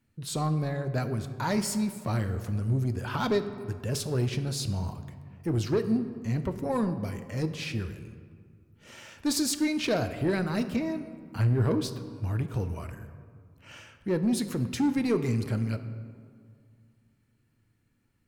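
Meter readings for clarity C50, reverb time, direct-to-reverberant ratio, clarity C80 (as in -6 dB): 11.0 dB, 2.1 s, 8.5 dB, 12.0 dB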